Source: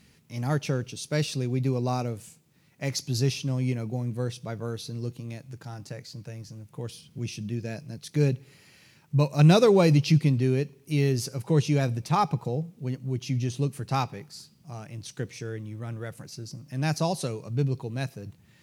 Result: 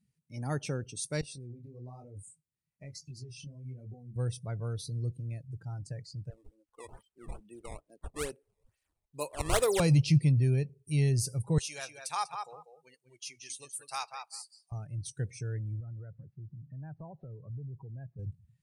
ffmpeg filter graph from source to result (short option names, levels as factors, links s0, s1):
-filter_complex "[0:a]asettb=1/sr,asplit=3[s0][s1][s2];[s0]atrim=end=1.214[s3];[s1]atrim=start=1.21:end=4.16,asetpts=PTS-STARTPTS,afade=t=in:d=0.004:c=qsin,afade=t=out:st=2.946:d=0.004:c=qsin,acompressor=threshold=0.0224:ratio=20:attack=3.2:release=140:knee=1:detection=peak,flanger=delay=20:depth=7.3:speed=1.1[s4];[s2]atrim=start=4.156[s5];[s3][s4]acrossfade=d=0.004:c1=hsin:c2=qsin[s6];[s6][s5]acrossfade=d=0.004:c1=qsin:c2=hsin,asettb=1/sr,asplit=3[s7][s8][s9];[s7]atrim=end=6.304[s10];[s8]atrim=start=6.3:end=9.8,asetpts=PTS-STARTPTS,afade=t=in:d=0.004:c=qsin,afade=t=out:st=3.496:d=0.004:c=qsin,highpass=f=320:w=0.5412,highpass=f=320:w=1.3066,acrusher=samples=17:mix=1:aa=0.000001:lfo=1:lforange=27.2:lforate=2.3,adynamicequalizer=threshold=0.00562:dfrequency=5700:dqfactor=0.7:tfrequency=5700:tqfactor=0.7:attack=5:release=100:ratio=0.375:range=2.5:mode=cutabove:tftype=highshelf[s11];[s9]atrim=start=9.796[s12];[s10][s11]acrossfade=d=0.004:c1=hsin:c2=qsin[s13];[s13][s12]acrossfade=d=0.004:c1=qsin:c2=hsin,asettb=1/sr,asplit=3[s14][s15][s16];[s14]atrim=end=11.584[s17];[s15]atrim=start=11.58:end=14.72,asetpts=PTS-STARTPTS,afade=t=in:d=0.004:c=qsin,afade=t=out:st=3.136:d=0.004:c=qsin,highpass=910,highshelf=f=4100:g=4.5,asplit=2[s18][s19];[s19]adelay=194,lowpass=f=4400:p=1,volume=0.531,asplit=2[s20][s21];[s21]adelay=194,lowpass=f=4400:p=1,volume=0.2,asplit=2[s22][s23];[s23]adelay=194,lowpass=f=4400:p=1,volume=0.2[s24];[s18][s20][s22][s24]amix=inputs=4:normalize=0,atrim=end_sample=138474[s25];[s16]atrim=start=14.716[s26];[s17][s25]acrossfade=d=0.004:c1=hsin:c2=qsin[s27];[s27][s26]acrossfade=d=0.004:c1=qsin:c2=hsin,asettb=1/sr,asplit=3[s28][s29][s30];[s28]atrim=end=15.804[s31];[s29]atrim=start=15.8:end=18.19,asetpts=PTS-STARTPTS,afade=t=in:d=0.004:c=qsin,afade=t=out:st=2.386:d=0.004:c=qsin,lowpass=f=1900:w=0.5412,lowpass=f=1900:w=1.3066,acompressor=threshold=0.00794:ratio=3:attack=3.2:release=140:knee=1:detection=peak[s32];[s30]atrim=start=18.186[s33];[s31][s32]acrossfade=d=0.004:c1=hsin:c2=qsin[s34];[s34][s33]acrossfade=d=0.004:c1=qsin:c2=hsin,equalizer=f=9000:t=o:w=0.6:g=12.5,afftdn=nr=24:nf=-43,asubboost=boost=9.5:cutoff=79,volume=0.501"